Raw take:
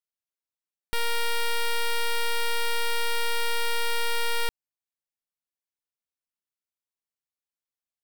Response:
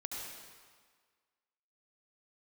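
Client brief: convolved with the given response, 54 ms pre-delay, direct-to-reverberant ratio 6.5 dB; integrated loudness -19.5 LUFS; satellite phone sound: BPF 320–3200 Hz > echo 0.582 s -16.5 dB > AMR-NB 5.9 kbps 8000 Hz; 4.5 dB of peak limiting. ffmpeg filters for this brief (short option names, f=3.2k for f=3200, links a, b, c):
-filter_complex "[0:a]alimiter=level_in=4.5dB:limit=-24dB:level=0:latency=1,volume=-4.5dB,asplit=2[a][b];[1:a]atrim=start_sample=2205,adelay=54[c];[b][c]afir=irnorm=-1:irlink=0,volume=-7dB[d];[a][d]amix=inputs=2:normalize=0,highpass=320,lowpass=3.2k,aecho=1:1:582:0.15,volume=15.5dB" -ar 8000 -c:a libopencore_amrnb -b:a 5900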